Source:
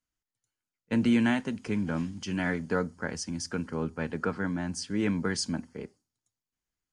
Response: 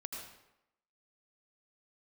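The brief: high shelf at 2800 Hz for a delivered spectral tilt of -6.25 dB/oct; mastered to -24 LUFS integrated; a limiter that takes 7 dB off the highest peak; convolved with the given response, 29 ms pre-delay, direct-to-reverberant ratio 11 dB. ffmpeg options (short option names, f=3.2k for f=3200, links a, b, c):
-filter_complex "[0:a]highshelf=f=2.8k:g=-8.5,alimiter=limit=-21.5dB:level=0:latency=1,asplit=2[a][b];[1:a]atrim=start_sample=2205,adelay=29[c];[b][c]afir=irnorm=-1:irlink=0,volume=-10dB[d];[a][d]amix=inputs=2:normalize=0,volume=9dB"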